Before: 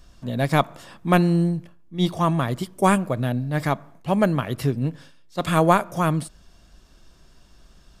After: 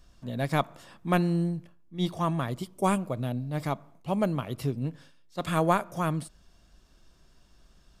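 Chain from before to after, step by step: 2.5–4.85 bell 1700 Hz -8 dB 0.38 oct; gain -7 dB

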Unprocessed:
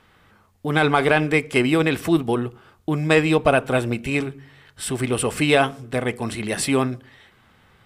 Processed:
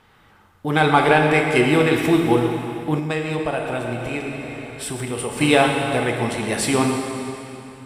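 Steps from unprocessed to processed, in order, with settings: bell 860 Hz +6 dB 0.21 oct; reverb RT60 2.8 s, pre-delay 5 ms, DRR 1.5 dB; 2.99–5.41 compressor 2:1, threshold -28 dBFS, peak gain reduction 10 dB

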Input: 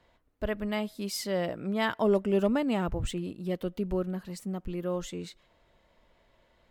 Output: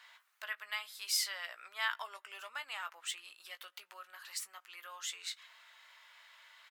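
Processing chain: compressor 2.5:1, threshold -46 dBFS, peak gain reduction 17 dB; HPF 1200 Hz 24 dB/oct; doubler 18 ms -10 dB; gain +12.5 dB

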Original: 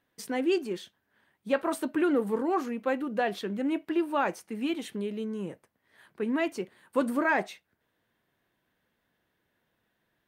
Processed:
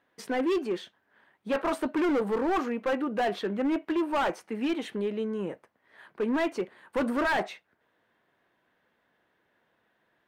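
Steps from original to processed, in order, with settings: overdrive pedal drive 16 dB, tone 1200 Hz, clips at -13.5 dBFS; hard clip -23 dBFS, distortion -13 dB

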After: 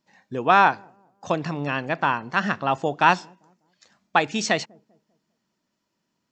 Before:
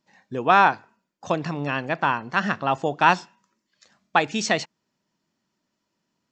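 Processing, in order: dark delay 0.198 s, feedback 35%, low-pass 480 Hz, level -24 dB

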